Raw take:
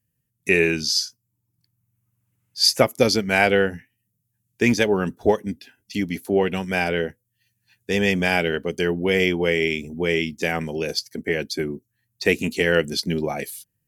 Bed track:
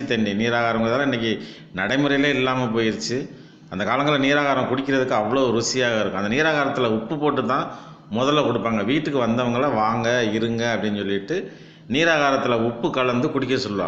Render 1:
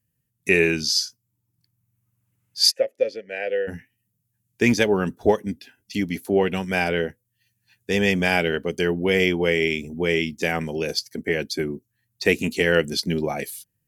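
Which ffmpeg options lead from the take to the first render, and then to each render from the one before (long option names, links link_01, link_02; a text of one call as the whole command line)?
ffmpeg -i in.wav -filter_complex "[0:a]asplit=3[link_01][link_02][link_03];[link_01]afade=type=out:start_time=2.7:duration=0.02[link_04];[link_02]asplit=3[link_05][link_06][link_07];[link_05]bandpass=frequency=530:width_type=q:width=8,volume=0dB[link_08];[link_06]bandpass=frequency=1840:width_type=q:width=8,volume=-6dB[link_09];[link_07]bandpass=frequency=2480:width_type=q:width=8,volume=-9dB[link_10];[link_08][link_09][link_10]amix=inputs=3:normalize=0,afade=type=in:start_time=2.7:duration=0.02,afade=type=out:start_time=3.67:duration=0.02[link_11];[link_03]afade=type=in:start_time=3.67:duration=0.02[link_12];[link_04][link_11][link_12]amix=inputs=3:normalize=0" out.wav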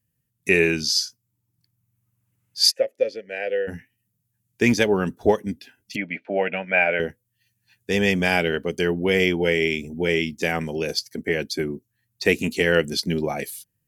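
ffmpeg -i in.wav -filter_complex "[0:a]asettb=1/sr,asplit=3[link_01][link_02][link_03];[link_01]atrim=end=5.964[link_04];[link_02]atrim=start=5.96:end=7,asetpts=PTS-STARTPTS,afade=type=in:duration=0.004:curve=qsin,afade=type=out:start_time=1.036:duration=0.004:curve=qsin,highpass=270,equalizer=frequency=270:width_type=q:width=4:gain=-5,equalizer=frequency=390:width_type=q:width=4:gain=-10,equalizer=frequency=600:width_type=q:width=4:gain=9,equalizer=frequency=1100:width_type=q:width=4:gain=-10,equalizer=frequency=1500:width_type=q:width=4:gain=4,equalizer=frequency=2400:width_type=q:width=4:gain=10,lowpass=frequency=2500:width=0.5412,lowpass=frequency=2500:width=1.3066[link_05];[link_03]atrim=start=6.996[link_06];[link_04][link_05]acrossfade=duration=0.004:curve1=hsin:curve2=qsin[link_07];[link_07][link_06]acrossfade=duration=0.004:curve1=qsin:curve2=hsin,asettb=1/sr,asplit=3[link_08][link_09][link_10];[link_08]atrim=end=9.364[link_11];[link_09]atrim=start=9.36:end=10.09,asetpts=PTS-STARTPTS,afade=type=in:duration=0.004:curve=qsin,afade=type=out:start_time=0.726:duration=0.004:curve=qsin,asuperstop=centerf=1100:order=20:qfactor=3.5[link_12];[link_10]atrim=start=10.086[link_13];[link_11][link_12]acrossfade=duration=0.004:curve1=hsin:curve2=qsin[link_14];[link_14][link_13]acrossfade=duration=0.004:curve1=qsin:curve2=hsin" out.wav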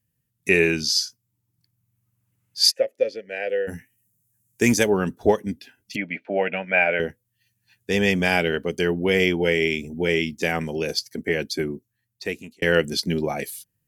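ffmpeg -i in.wav -filter_complex "[0:a]asettb=1/sr,asplit=3[link_01][link_02][link_03];[link_01]atrim=end=3.494[link_04];[link_02]atrim=start=3.49:end=4.9,asetpts=PTS-STARTPTS,afade=type=in:duration=0.004:curve=qsin,afade=type=out:start_time=1.406:duration=0.004:curve=qsin,highshelf=frequency=5600:width_type=q:width=1.5:gain=8.5[link_05];[link_03]atrim=start=4.896[link_06];[link_04][link_05]acrossfade=duration=0.004:curve1=hsin:curve2=qsin[link_07];[link_07][link_06]acrossfade=duration=0.004:curve1=qsin:curve2=hsin,asplit=2[link_08][link_09];[link_08]atrim=end=12.62,asetpts=PTS-STARTPTS,afade=type=out:start_time=11.65:duration=0.97[link_10];[link_09]atrim=start=12.62,asetpts=PTS-STARTPTS,afade=type=in:duration=0.004:curve=hsin[link_11];[link_10][link_11]concat=n=2:v=0:a=1" out.wav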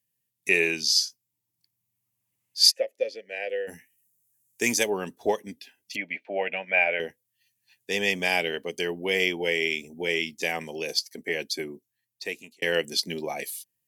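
ffmpeg -i in.wav -af "highpass=frequency=830:poles=1,equalizer=frequency=1400:width_type=o:width=0.42:gain=-12" out.wav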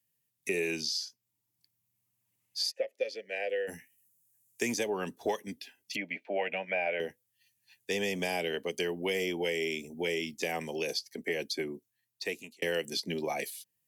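ffmpeg -i in.wav -filter_complex "[0:a]acrossover=split=210|690|5300[link_01][link_02][link_03][link_04];[link_03]alimiter=limit=-18dB:level=0:latency=1:release=28[link_05];[link_01][link_02][link_05][link_04]amix=inputs=4:normalize=0,acrossover=split=990|4800[link_06][link_07][link_08];[link_06]acompressor=threshold=-30dB:ratio=4[link_09];[link_07]acompressor=threshold=-35dB:ratio=4[link_10];[link_08]acompressor=threshold=-43dB:ratio=4[link_11];[link_09][link_10][link_11]amix=inputs=3:normalize=0" out.wav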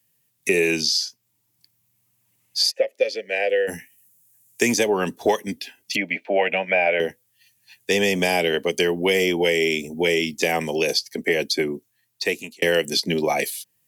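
ffmpeg -i in.wav -af "volume=12dB" out.wav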